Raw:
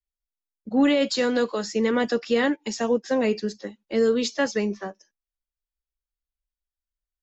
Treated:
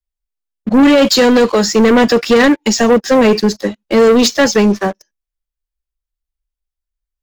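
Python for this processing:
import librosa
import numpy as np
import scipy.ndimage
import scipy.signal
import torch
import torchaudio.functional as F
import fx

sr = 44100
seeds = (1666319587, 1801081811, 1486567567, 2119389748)

y = fx.low_shelf(x, sr, hz=88.0, db=11.0)
y = fx.leveller(y, sr, passes=3)
y = y * 10.0 ** (6.0 / 20.0)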